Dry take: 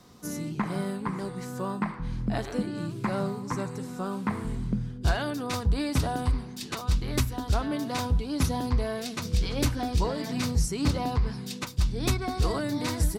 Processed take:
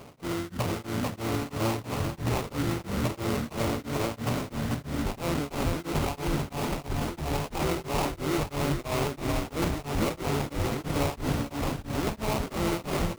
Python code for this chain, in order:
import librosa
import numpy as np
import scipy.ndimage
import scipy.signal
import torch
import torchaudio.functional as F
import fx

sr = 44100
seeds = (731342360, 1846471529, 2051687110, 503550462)

p1 = fx.highpass(x, sr, hz=190.0, slope=6)
p2 = fx.over_compress(p1, sr, threshold_db=-40.0, ratio=-1.0)
p3 = p1 + F.gain(torch.from_numpy(p2), 0.5).numpy()
p4 = fx.pitch_keep_formants(p3, sr, semitones=-9.5)
p5 = fx.sample_hold(p4, sr, seeds[0], rate_hz=1700.0, jitter_pct=20)
p6 = p5 + fx.echo_feedback(p5, sr, ms=440, feedback_pct=56, wet_db=-4.5, dry=0)
p7 = p6 * np.abs(np.cos(np.pi * 3.0 * np.arange(len(p6)) / sr))
y = F.gain(torch.from_numpy(p7), 2.0).numpy()